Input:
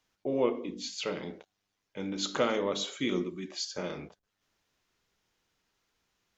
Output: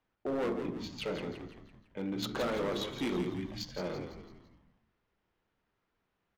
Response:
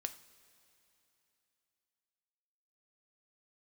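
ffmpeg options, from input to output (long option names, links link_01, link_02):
-filter_complex "[0:a]adynamicsmooth=sensitivity=3.5:basefreq=2200,asoftclip=type=hard:threshold=-29.5dB,asplit=6[link_01][link_02][link_03][link_04][link_05][link_06];[link_02]adelay=168,afreqshift=-74,volume=-8dB[link_07];[link_03]adelay=336,afreqshift=-148,volume=-14.6dB[link_08];[link_04]adelay=504,afreqshift=-222,volume=-21.1dB[link_09];[link_05]adelay=672,afreqshift=-296,volume=-27.7dB[link_10];[link_06]adelay=840,afreqshift=-370,volume=-34.2dB[link_11];[link_01][link_07][link_08][link_09][link_10][link_11]amix=inputs=6:normalize=0"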